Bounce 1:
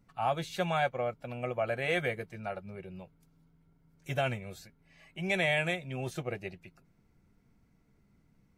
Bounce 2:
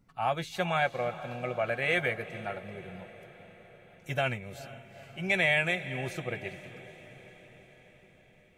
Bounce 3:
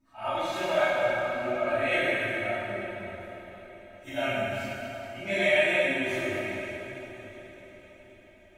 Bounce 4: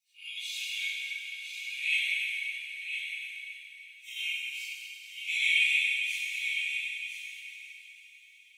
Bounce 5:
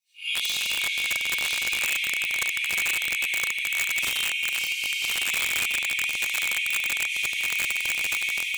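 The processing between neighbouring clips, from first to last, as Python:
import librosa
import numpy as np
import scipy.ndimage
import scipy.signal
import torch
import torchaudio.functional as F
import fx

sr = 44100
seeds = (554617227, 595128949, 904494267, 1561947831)

y1 = fx.echo_diffused(x, sr, ms=455, feedback_pct=62, wet_db=-14.0)
y1 = fx.dynamic_eq(y1, sr, hz=2000.0, q=1.1, threshold_db=-44.0, ratio=4.0, max_db=5)
y2 = fx.phase_scramble(y1, sr, seeds[0], window_ms=100)
y2 = y2 + 0.99 * np.pad(y2, (int(3.2 * sr / 1000.0), 0))[:len(y2)]
y2 = fx.rev_plate(y2, sr, seeds[1], rt60_s=3.3, hf_ratio=0.7, predelay_ms=0, drr_db=-7.5)
y2 = F.gain(torch.from_numpy(y2), -7.0).numpy()
y3 = scipy.signal.sosfilt(scipy.signal.cheby1(6, 1.0, 2300.0, 'highpass', fs=sr, output='sos'), y2)
y3 = y3 + 10.0 ** (-8.0 / 20.0) * np.pad(y3, (int(1012 * sr / 1000.0), 0))[:len(y3)]
y3 = F.gain(torch.from_numpy(y3), 4.5).numpy()
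y4 = fx.recorder_agc(y3, sr, target_db=-16.5, rise_db_per_s=47.0, max_gain_db=30)
y4 = fx.echo_feedback(y4, sr, ms=478, feedback_pct=57, wet_db=-11.5)
y4 = (np.mod(10.0 ** (16.5 / 20.0) * y4 + 1.0, 2.0) - 1.0) / 10.0 ** (16.5 / 20.0)
y4 = F.gain(torch.from_numpy(y4), -1.5).numpy()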